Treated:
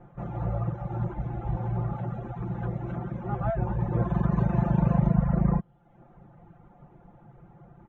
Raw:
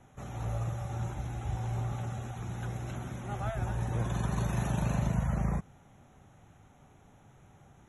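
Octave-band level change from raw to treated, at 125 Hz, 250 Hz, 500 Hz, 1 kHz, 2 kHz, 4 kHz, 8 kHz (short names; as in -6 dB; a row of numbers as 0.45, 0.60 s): +5.5 dB, +9.0 dB, +7.0 dB, +4.5 dB, -1.5 dB, under -10 dB, under -25 dB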